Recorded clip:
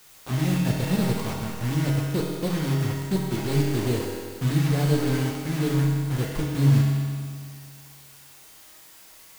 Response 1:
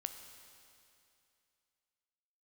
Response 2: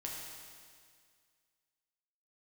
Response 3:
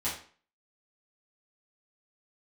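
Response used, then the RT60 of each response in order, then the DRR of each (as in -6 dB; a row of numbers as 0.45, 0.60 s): 2; 2.6, 2.0, 0.45 s; 6.5, -3.0, -10.5 dB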